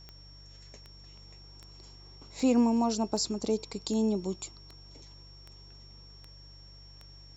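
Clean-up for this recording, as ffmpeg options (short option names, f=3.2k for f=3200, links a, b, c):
-af "adeclick=t=4,bandreject=f=48.6:t=h:w=4,bandreject=f=97.2:t=h:w=4,bandreject=f=145.8:t=h:w=4,bandreject=f=5.5k:w=30"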